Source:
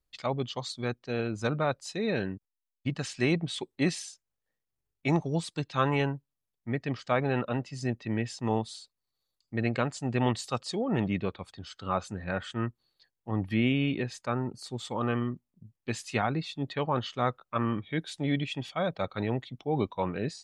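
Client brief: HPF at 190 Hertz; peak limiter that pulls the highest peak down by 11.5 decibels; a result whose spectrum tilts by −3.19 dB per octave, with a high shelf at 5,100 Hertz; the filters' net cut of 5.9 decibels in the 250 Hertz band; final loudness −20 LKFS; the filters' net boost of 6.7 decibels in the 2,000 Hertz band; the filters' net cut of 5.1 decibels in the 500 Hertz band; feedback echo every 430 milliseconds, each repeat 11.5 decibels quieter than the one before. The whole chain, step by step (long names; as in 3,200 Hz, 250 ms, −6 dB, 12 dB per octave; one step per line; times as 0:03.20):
high-pass filter 190 Hz
parametric band 250 Hz −4 dB
parametric band 500 Hz −5.5 dB
parametric band 2,000 Hz +7.5 dB
high-shelf EQ 5,100 Hz +7 dB
brickwall limiter −21.5 dBFS
repeating echo 430 ms, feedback 27%, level −11.5 dB
level +15 dB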